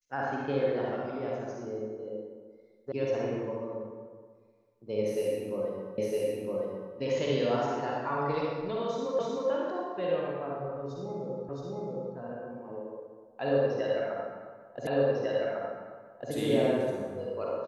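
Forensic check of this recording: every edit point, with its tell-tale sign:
0:02.92: cut off before it has died away
0:05.98: the same again, the last 0.96 s
0:09.19: the same again, the last 0.31 s
0:11.49: the same again, the last 0.67 s
0:14.87: the same again, the last 1.45 s

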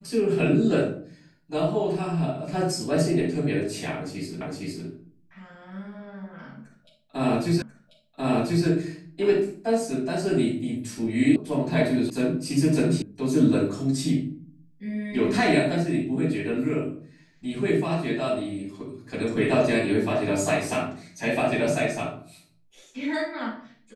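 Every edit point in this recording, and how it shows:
0:04.41: the same again, the last 0.46 s
0:07.62: the same again, the last 1.04 s
0:11.36: cut off before it has died away
0:12.10: cut off before it has died away
0:13.02: cut off before it has died away

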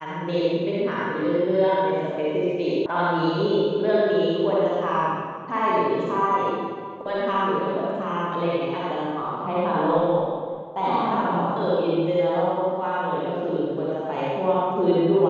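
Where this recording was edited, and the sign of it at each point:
0:02.86: cut off before it has died away

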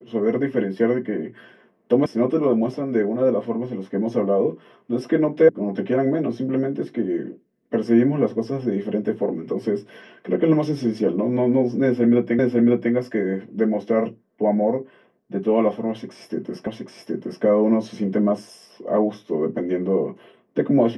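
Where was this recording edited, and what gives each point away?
0:02.06: cut off before it has died away
0:05.49: cut off before it has died away
0:12.39: the same again, the last 0.55 s
0:16.67: the same again, the last 0.77 s

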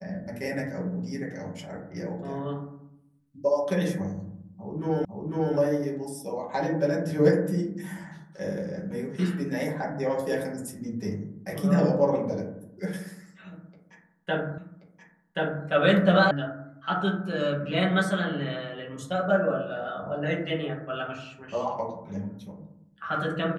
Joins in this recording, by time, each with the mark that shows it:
0:05.05: the same again, the last 0.5 s
0:14.58: the same again, the last 1.08 s
0:16.31: cut off before it has died away

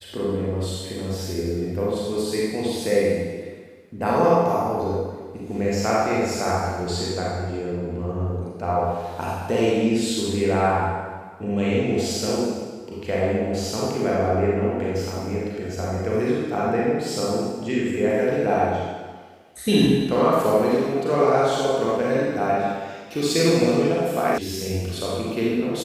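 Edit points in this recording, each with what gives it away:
0:24.38: cut off before it has died away

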